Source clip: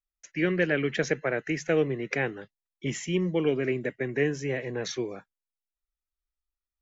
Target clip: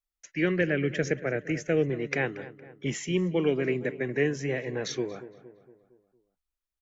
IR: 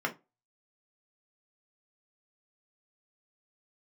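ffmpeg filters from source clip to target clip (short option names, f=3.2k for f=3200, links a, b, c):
-filter_complex "[0:a]asettb=1/sr,asplit=3[a][b][c];[a]atrim=end=0.614[d];[b]atrim=start=0.61:end=1.9,asetpts=PTS-STARTPTS,afade=t=in:d=0.004:c=qsin,afade=t=out:st=1.286:d=0.004:c=qsin,equalizer=f=100:t=o:w=0.67:g=9,equalizer=f=1k:t=o:w=0.67:g=-12,equalizer=f=4k:t=o:w=0.67:g=-9[e];[c]atrim=start=1.896[f];[d][e]acrossfade=d=0.004:c1=hsin:c2=qsin[g];[g][f]acrossfade=d=0.004:c1=qsin:c2=hsin,asplit=2[h][i];[i]adelay=231,lowpass=f=2k:p=1,volume=-15dB,asplit=2[j][k];[k]adelay=231,lowpass=f=2k:p=1,volume=0.53,asplit=2[l][m];[m]adelay=231,lowpass=f=2k:p=1,volume=0.53,asplit=2[n][o];[o]adelay=231,lowpass=f=2k:p=1,volume=0.53,asplit=2[p][q];[q]adelay=231,lowpass=f=2k:p=1,volume=0.53[r];[h][j][l][n][p][r]amix=inputs=6:normalize=0"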